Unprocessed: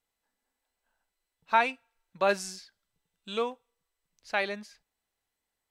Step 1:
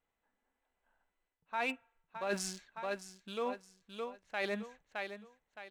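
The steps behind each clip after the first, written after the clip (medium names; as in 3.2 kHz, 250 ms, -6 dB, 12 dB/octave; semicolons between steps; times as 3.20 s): local Wiener filter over 9 samples; feedback delay 616 ms, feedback 30%, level -13 dB; reverse; compression 12:1, threshold -35 dBFS, peak gain reduction 18 dB; reverse; trim +2.5 dB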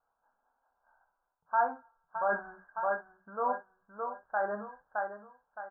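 Chebyshev low-pass 1.6 kHz, order 8; resonant low shelf 510 Hz -11 dB, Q 1.5; early reflections 24 ms -7 dB, 61 ms -11.5 dB; trim +7.5 dB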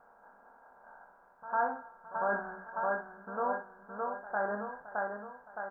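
spectral levelling over time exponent 0.6; peaking EQ 930 Hz -6 dB 2 oct; reverse echo 101 ms -15.5 dB; trim +1 dB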